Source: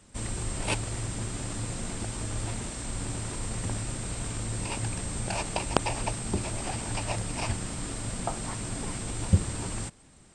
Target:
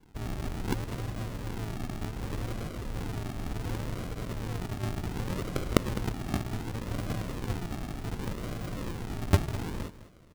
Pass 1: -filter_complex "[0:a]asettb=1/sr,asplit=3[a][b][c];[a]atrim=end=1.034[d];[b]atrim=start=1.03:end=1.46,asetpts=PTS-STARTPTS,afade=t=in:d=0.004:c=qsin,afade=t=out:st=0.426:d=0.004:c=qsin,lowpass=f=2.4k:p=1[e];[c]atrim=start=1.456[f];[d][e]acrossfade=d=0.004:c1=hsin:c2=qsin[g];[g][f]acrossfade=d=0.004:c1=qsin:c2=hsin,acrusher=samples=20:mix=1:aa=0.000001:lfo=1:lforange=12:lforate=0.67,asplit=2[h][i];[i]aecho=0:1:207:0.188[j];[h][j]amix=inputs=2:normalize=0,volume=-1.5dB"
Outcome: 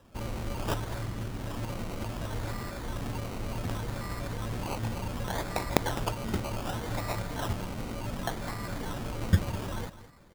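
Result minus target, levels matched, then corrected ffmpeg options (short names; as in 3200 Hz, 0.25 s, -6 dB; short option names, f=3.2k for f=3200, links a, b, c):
decimation with a swept rate: distortion -6 dB
-filter_complex "[0:a]asettb=1/sr,asplit=3[a][b][c];[a]atrim=end=1.034[d];[b]atrim=start=1.03:end=1.46,asetpts=PTS-STARTPTS,afade=t=in:d=0.004:c=qsin,afade=t=out:st=0.426:d=0.004:c=qsin,lowpass=f=2.4k:p=1[e];[c]atrim=start=1.456[f];[d][e]acrossfade=d=0.004:c1=hsin:c2=qsin[g];[g][f]acrossfade=d=0.004:c1=qsin:c2=hsin,acrusher=samples=69:mix=1:aa=0.000001:lfo=1:lforange=41.4:lforate=0.67,asplit=2[h][i];[i]aecho=0:1:207:0.188[j];[h][j]amix=inputs=2:normalize=0,volume=-1.5dB"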